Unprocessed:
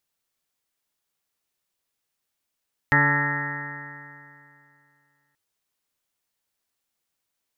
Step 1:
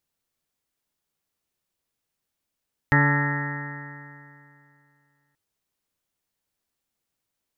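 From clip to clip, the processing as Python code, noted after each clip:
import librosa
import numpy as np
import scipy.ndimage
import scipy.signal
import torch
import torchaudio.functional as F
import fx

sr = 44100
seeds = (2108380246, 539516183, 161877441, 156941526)

y = fx.low_shelf(x, sr, hz=480.0, db=7.5)
y = y * 10.0 ** (-2.5 / 20.0)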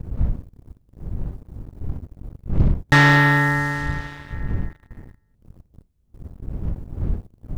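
y = fx.dmg_wind(x, sr, seeds[0], corner_hz=80.0, level_db=-36.0)
y = fx.leveller(y, sr, passes=3)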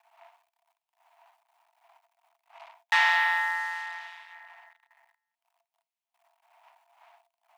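y = scipy.signal.sosfilt(scipy.signal.cheby1(6, 9, 660.0, 'highpass', fs=sr, output='sos'), x)
y = y * 10.0 ** (-1.5 / 20.0)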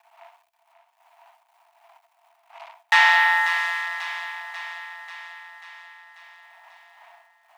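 y = fx.echo_feedback(x, sr, ms=540, feedback_pct=60, wet_db=-10)
y = y * 10.0 ** (6.5 / 20.0)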